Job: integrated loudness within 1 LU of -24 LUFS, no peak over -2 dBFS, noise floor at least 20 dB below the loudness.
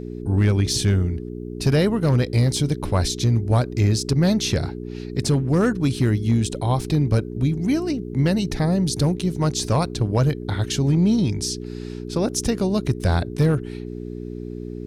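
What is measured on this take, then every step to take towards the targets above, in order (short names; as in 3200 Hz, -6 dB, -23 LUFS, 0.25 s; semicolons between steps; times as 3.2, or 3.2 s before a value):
clipped 0.5%; flat tops at -10.5 dBFS; hum 60 Hz; harmonics up to 420 Hz; hum level -30 dBFS; loudness -21.5 LUFS; peak -10.5 dBFS; loudness target -24.0 LUFS
-> clip repair -10.5 dBFS; de-hum 60 Hz, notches 7; gain -2.5 dB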